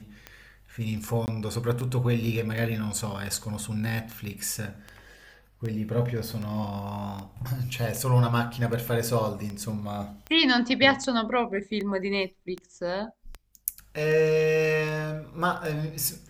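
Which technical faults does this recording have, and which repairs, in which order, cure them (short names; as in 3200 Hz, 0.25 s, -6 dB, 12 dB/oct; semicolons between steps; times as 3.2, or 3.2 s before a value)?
tick 78 rpm -22 dBFS
1.26–1.28 gap 19 ms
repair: de-click; interpolate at 1.26, 19 ms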